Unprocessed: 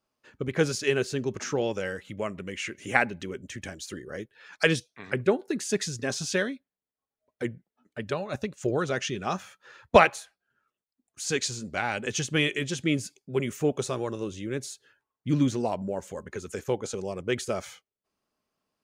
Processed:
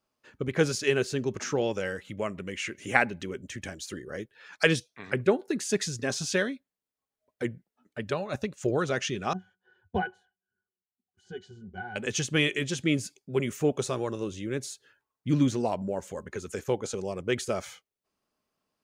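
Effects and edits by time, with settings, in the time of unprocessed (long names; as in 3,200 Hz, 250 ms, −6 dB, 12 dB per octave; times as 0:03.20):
0:09.33–0:11.96: resonances in every octave F#, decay 0.1 s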